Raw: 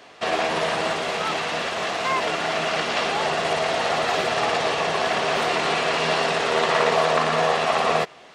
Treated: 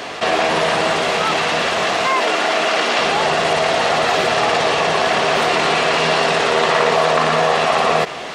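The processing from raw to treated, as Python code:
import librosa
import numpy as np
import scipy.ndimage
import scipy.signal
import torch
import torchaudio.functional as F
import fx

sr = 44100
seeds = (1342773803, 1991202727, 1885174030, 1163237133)

y = fx.highpass(x, sr, hz=220.0, slope=24, at=(2.07, 2.99))
y = fx.env_flatten(y, sr, amount_pct=50)
y = y * 10.0 ** (3.5 / 20.0)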